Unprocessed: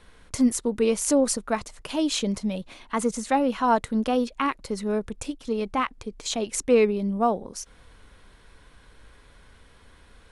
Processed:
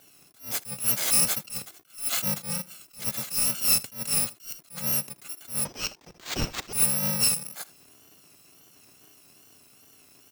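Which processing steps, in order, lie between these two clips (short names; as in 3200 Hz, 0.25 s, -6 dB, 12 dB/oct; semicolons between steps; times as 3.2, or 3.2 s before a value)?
FFT order left unsorted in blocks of 128 samples; HPF 130 Hz 24 dB/oct; in parallel at -10 dB: wrapped overs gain 19.5 dB; on the sum: wow and flutter 71 cents; on a send: echo 80 ms -21 dB; 5.65–6.73 on the sum: careless resampling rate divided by 4×, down none, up hold; attack slew limiter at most 180 dB/s; gain -1 dB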